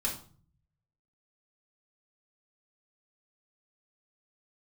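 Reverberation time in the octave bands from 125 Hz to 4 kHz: 1.2, 0.70, 0.45, 0.45, 0.35, 0.35 seconds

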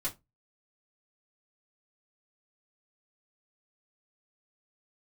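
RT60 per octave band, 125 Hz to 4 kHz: 0.30, 0.25, 0.20, 0.20, 0.15, 0.15 seconds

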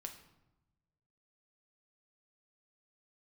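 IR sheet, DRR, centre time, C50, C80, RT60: 4.0 dB, 15 ms, 9.5 dB, 12.5 dB, 1.0 s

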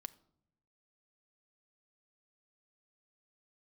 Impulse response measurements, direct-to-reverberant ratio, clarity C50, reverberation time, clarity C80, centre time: 12.0 dB, 19.5 dB, non-exponential decay, 22.5 dB, 2 ms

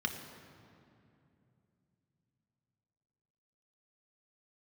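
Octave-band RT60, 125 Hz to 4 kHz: 4.6, 3.9, 3.0, 2.5, 2.2, 1.7 seconds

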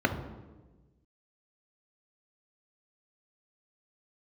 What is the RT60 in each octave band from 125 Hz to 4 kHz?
1.7, 1.5, 1.4, 1.1, 0.90, 0.80 seconds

